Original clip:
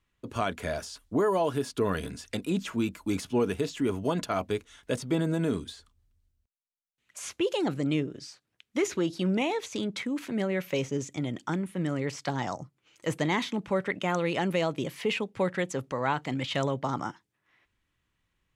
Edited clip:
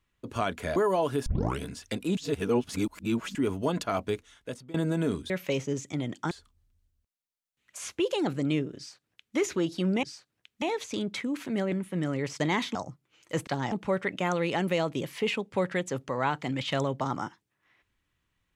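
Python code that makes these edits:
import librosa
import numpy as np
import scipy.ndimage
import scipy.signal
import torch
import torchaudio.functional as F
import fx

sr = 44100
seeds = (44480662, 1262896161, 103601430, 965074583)

y = fx.edit(x, sr, fx.cut(start_s=0.76, length_s=0.42),
    fx.tape_start(start_s=1.68, length_s=0.34),
    fx.reverse_span(start_s=2.59, length_s=1.18),
    fx.fade_out_to(start_s=4.52, length_s=0.64, floor_db=-21.5),
    fx.duplicate(start_s=8.18, length_s=0.59, to_s=9.44),
    fx.move(start_s=10.54, length_s=1.01, to_s=5.72),
    fx.swap(start_s=12.23, length_s=0.25, other_s=13.2, other_length_s=0.35), tone=tone)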